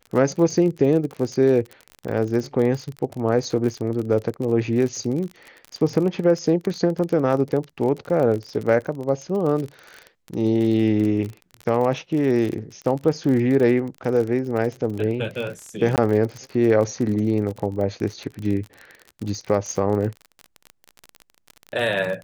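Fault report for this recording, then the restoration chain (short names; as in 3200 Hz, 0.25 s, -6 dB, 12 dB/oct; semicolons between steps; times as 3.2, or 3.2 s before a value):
crackle 37/s -27 dBFS
15.96–15.98 gap 18 ms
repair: de-click; interpolate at 15.96, 18 ms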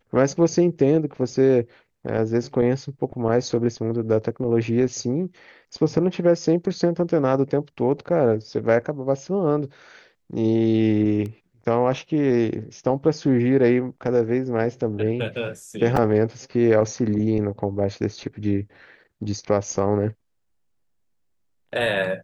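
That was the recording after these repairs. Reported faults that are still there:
none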